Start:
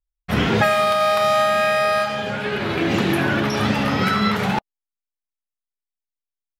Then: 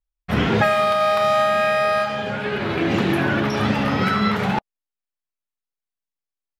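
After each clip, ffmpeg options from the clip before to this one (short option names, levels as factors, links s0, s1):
-af "highshelf=f=4500:g=-7.5"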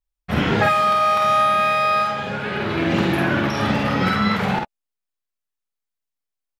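-af "aecho=1:1:49|61:0.668|0.299,volume=0.891"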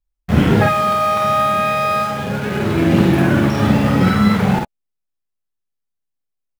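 -filter_complex "[0:a]lowshelf=f=480:g=10.5,asplit=2[s0][s1];[s1]acrusher=bits=3:mix=0:aa=0.000001,volume=0.335[s2];[s0][s2]amix=inputs=2:normalize=0,volume=0.668"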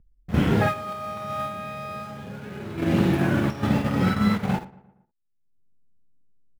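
-filter_complex "[0:a]agate=range=0.316:threshold=0.2:ratio=16:detection=peak,acrossover=split=360[s0][s1];[s0]acompressor=mode=upward:threshold=0.0562:ratio=2.5[s2];[s2][s1]amix=inputs=2:normalize=0,asplit=2[s3][s4];[s4]adelay=116,lowpass=f=2200:p=1,volume=0.106,asplit=2[s5][s6];[s6]adelay=116,lowpass=f=2200:p=1,volume=0.5,asplit=2[s7][s8];[s8]adelay=116,lowpass=f=2200:p=1,volume=0.5,asplit=2[s9][s10];[s10]adelay=116,lowpass=f=2200:p=1,volume=0.5[s11];[s3][s5][s7][s9][s11]amix=inputs=5:normalize=0,volume=0.422"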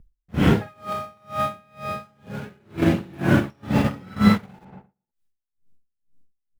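-af "aeval=exprs='val(0)*pow(10,-30*(0.5-0.5*cos(2*PI*2.1*n/s))/20)':c=same,volume=2.24"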